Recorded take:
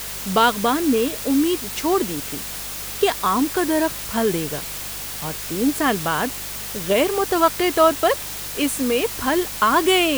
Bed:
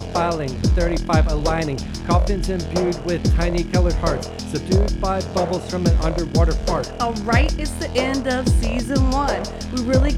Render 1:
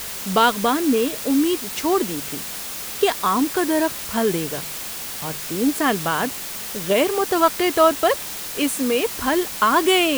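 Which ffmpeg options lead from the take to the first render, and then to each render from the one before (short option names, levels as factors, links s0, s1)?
-af "bandreject=f=50:t=h:w=4,bandreject=f=100:t=h:w=4,bandreject=f=150:t=h:w=4"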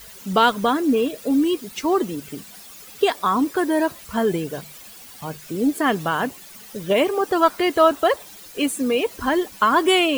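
-af "afftdn=nr=14:nf=-31"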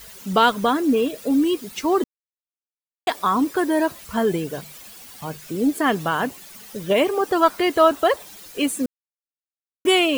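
-filter_complex "[0:a]asplit=5[s0][s1][s2][s3][s4];[s0]atrim=end=2.04,asetpts=PTS-STARTPTS,afade=t=out:st=2.036:d=0.004:c=hsin[s5];[s1]atrim=start=2.04:end=3.07,asetpts=PTS-STARTPTS,volume=0[s6];[s2]atrim=start=3.07:end=8.86,asetpts=PTS-STARTPTS,afade=t=in:d=0.004:c=hsin,afade=t=out:st=5.786:d=0.004:c=hsin[s7];[s3]atrim=start=8.86:end=9.85,asetpts=PTS-STARTPTS,volume=0[s8];[s4]atrim=start=9.85,asetpts=PTS-STARTPTS,afade=t=in:d=0.004:c=hsin[s9];[s5][s6][s7][s8][s9]concat=n=5:v=0:a=1"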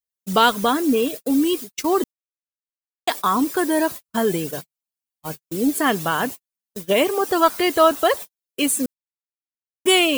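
-af "agate=range=0.00141:threshold=0.0316:ratio=16:detection=peak,highshelf=f=4700:g=9.5"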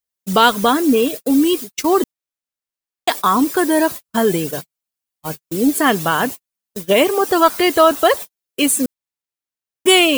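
-af "volume=1.68,alimiter=limit=0.891:level=0:latency=1"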